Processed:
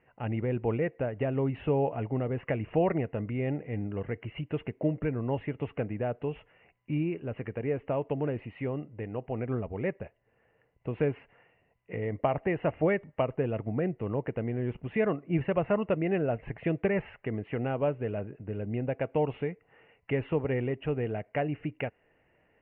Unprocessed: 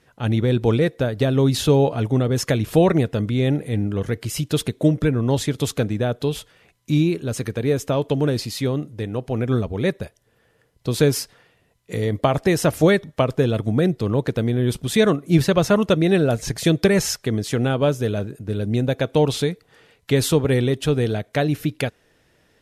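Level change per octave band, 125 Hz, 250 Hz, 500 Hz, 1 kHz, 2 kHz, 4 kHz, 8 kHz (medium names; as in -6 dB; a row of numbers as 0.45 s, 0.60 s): -12.0 dB, -11.5 dB, -9.5 dB, -8.0 dB, -10.0 dB, under -20 dB, under -40 dB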